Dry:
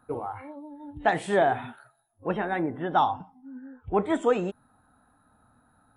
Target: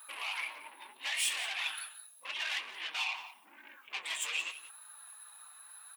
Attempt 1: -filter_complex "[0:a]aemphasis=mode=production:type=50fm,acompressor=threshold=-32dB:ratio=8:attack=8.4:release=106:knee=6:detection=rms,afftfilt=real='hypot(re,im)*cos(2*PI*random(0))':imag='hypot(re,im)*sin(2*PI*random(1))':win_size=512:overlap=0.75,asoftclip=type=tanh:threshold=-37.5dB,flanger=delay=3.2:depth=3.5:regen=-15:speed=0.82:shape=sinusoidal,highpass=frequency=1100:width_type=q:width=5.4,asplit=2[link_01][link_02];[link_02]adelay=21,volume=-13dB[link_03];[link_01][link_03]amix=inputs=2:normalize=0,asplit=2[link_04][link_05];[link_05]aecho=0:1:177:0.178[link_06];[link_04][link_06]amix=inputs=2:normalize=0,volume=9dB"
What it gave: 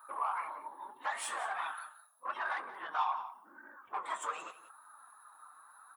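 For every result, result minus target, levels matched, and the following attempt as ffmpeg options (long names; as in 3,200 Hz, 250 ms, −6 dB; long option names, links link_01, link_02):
4,000 Hz band −13.0 dB; soft clipping: distortion −8 dB
-filter_complex "[0:a]aemphasis=mode=production:type=50fm,acompressor=threshold=-32dB:ratio=8:attack=8.4:release=106:knee=6:detection=rms,afftfilt=real='hypot(re,im)*cos(2*PI*random(0))':imag='hypot(re,im)*sin(2*PI*random(1))':win_size=512:overlap=0.75,asoftclip=type=tanh:threshold=-37.5dB,flanger=delay=3.2:depth=3.5:regen=-15:speed=0.82:shape=sinusoidal,highpass=frequency=1100:width_type=q:width=5.4,highshelf=frequency=1800:width_type=q:width=3:gain=13,asplit=2[link_01][link_02];[link_02]adelay=21,volume=-13dB[link_03];[link_01][link_03]amix=inputs=2:normalize=0,asplit=2[link_04][link_05];[link_05]aecho=0:1:177:0.178[link_06];[link_04][link_06]amix=inputs=2:normalize=0,volume=9dB"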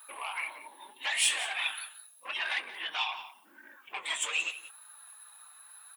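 soft clipping: distortion −8 dB
-filter_complex "[0:a]aemphasis=mode=production:type=50fm,acompressor=threshold=-32dB:ratio=8:attack=8.4:release=106:knee=6:detection=rms,afftfilt=real='hypot(re,im)*cos(2*PI*random(0))':imag='hypot(re,im)*sin(2*PI*random(1))':win_size=512:overlap=0.75,asoftclip=type=tanh:threshold=-48.5dB,flanger=delay=3.2:depth=3.5:regen=-15:speed=0.82:shape=sinusoidal,highpass=frequency=1100:width_type=q:width=5.4,highshelf=frequency=1800:width_type=q:width=3:gain=13,asplit=2[link_01][link_02];[link_02]adelay=21,volume=-13dB[link_03];[link_01][link_03]amix=inputs=2:normalize=0,asplit=2[link_04][link_05];[link_05]aecho=0:1:177:0.178[link_06];[link_04][link_06]amix=inputs=2:normalize=0,volume=9dB"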